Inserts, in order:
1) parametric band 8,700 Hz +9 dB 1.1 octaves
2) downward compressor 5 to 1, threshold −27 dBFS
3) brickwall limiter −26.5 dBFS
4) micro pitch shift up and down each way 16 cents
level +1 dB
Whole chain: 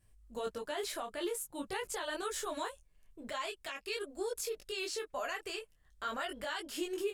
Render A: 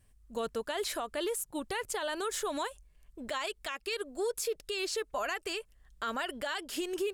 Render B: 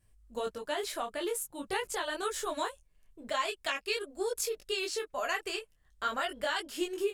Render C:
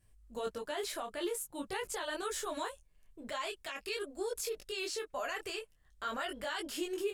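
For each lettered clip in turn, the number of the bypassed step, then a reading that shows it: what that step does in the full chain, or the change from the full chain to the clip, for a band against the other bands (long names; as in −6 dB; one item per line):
4, change in crest factor −4.5 dB
3, average gain reduction 2.5 dB
2, average gain reduction 3.0 dB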